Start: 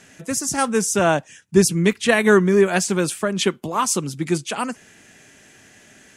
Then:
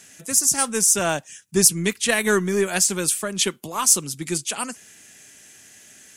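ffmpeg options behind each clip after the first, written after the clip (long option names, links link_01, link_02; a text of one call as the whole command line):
ffmpeg -i in.wav -af "aeval=exprs='0.841*(cos(1*acos(clip(val(0)/0.841,-1,1)))-cos(1*PI/2))+0.0133*(cos(6*acos(clip(val(0)/0.841,-1,1)))-cos(6*PI/2))+0.00531*(cos(7*acos(clip(val(0)/0.841,-1,1)))-cos(7*PI/2))':channel_layout=same,crystalizer=i=4:c=0,volume=-6.5dB" out.wav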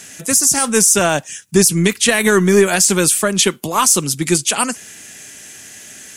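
ffmpeg -i in.wav -af "alimiter=level_in=12dB:limit=-1dB:release=50:level=0:latency=1,volume=-1dB" out.wav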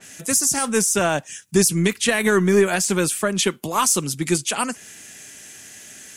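ffmpeg -i in.wav -af "adynamicequalizer=threshold=0.0355:dfrequency=3300:dqfactor=0.7:tfrequency=3300:tqfactor=0.7:attack=5:release=100:ratio=0.375:range=3:mode=cutabove:tftype=highshelf,volume=-4.5dB" out.wav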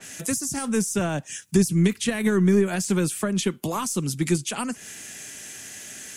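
ffmpeg -i in.wav -filter_complex "[0:a]acrossover=split=290[link_01][link_02];[link_02]acompressor=threshold=-29dB:ratio=6[link_03];[link_01][link_03]amix=inputs=2:normalize=0,volume=2dB" out.wav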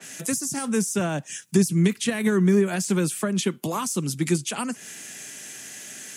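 ffmpeg -i in.wav -af "highpass=frequency=120:width=0.5412,highpass=frequency=120:width=1.3066" out.wav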